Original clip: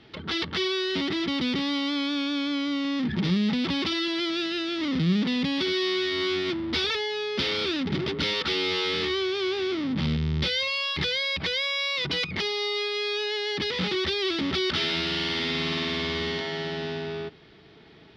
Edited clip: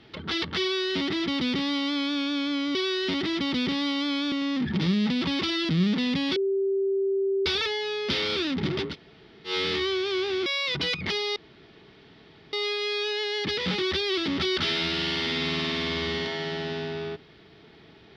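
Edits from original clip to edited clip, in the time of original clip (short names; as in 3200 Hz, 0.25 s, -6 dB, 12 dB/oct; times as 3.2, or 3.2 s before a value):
0.62–2.19 copy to 2.75
4.12–4.98 cut
5.65–6.75 bleep 390 Hz -22 dBFS
8.2–8.78 room tone, crossfade 0.10 s
9.75–11.76 cut
12.66 insert room tone 1.17 s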